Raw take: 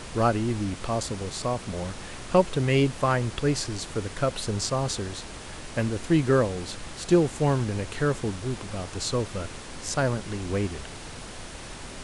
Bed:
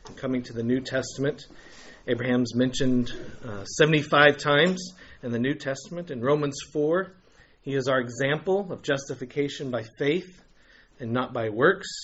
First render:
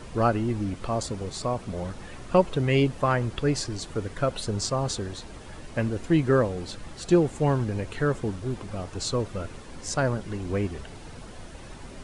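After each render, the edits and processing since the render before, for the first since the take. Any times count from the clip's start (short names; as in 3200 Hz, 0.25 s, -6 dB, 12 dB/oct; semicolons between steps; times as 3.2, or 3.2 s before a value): denoiser 9 dB, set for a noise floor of -40 dBFS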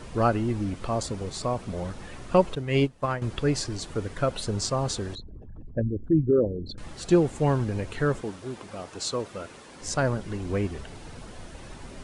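2.55–3.22 upward expander 2.5:1, over -30 dBFS; 5.15–6.78 formant sharpening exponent 3; 8.21–9.81 HPF 350 Hz 6 dB/oct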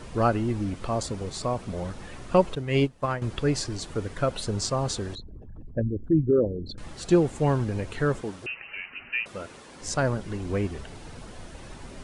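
8.46–9.26 inverted band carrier 2900 Hz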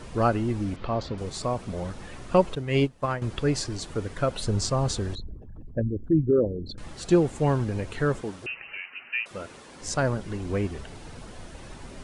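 0.76–1.18 LPF 4400 Hz 24 dB/oct; 4.41–5.34 low shelf 130 Hz +7.5 dB; 8.77–9.31 HPF 660 Hz 6 dB/oct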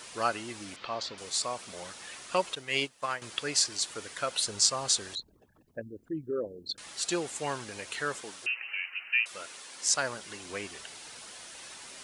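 HPF 1500 Hz 6 dB/oct; high shelf 2700 Hz +9 dB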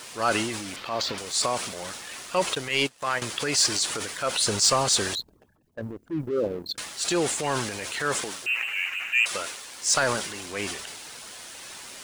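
transient shaper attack -6 dB, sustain +7 dB; sample leveller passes 2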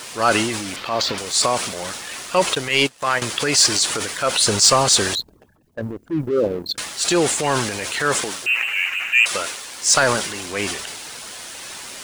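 gain +7 dB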